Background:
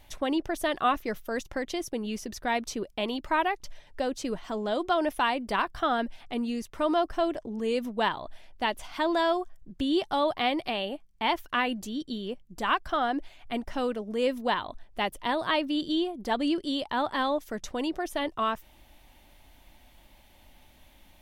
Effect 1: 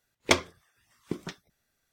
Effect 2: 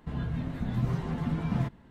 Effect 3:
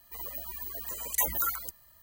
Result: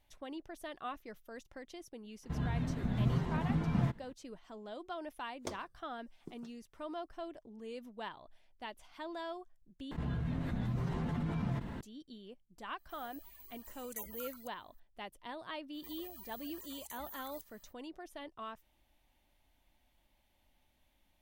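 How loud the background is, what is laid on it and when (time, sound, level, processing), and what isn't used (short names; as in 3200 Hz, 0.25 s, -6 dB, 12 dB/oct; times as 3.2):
background -17 dB
2.23 add 2 -2.5 dB
5.16 add 1 -16.5 dB + bell 2400 Hz -14.5 dB 1.5 oct
9.91 replace with 2 -9 dB + fast leveller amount 70%
12.78 add 3 -17 dB
15.72 add 3 -6.5 dB, fades 0.05 s + compressor, threshold -41 dBFS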